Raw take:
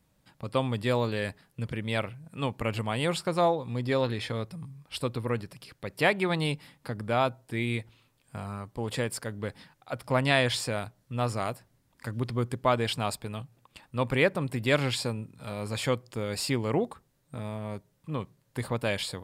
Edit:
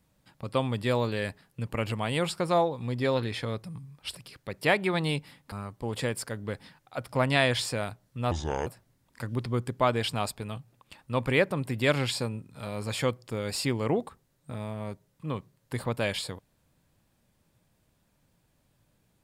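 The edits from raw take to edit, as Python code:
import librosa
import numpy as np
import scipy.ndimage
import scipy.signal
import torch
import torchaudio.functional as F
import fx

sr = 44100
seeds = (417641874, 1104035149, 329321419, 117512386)

y = fx.edit(x, sr, fx.cut(start_s=1.69, length_s=0.87),
    fx.cut(start_s=5.02, length_s=0.49),
    fx.cut(start_s=6.88, length_s=1.59),
    fx.speed_span(start_s=11.26, length_s=0.25, speed=0.7), tone=tone)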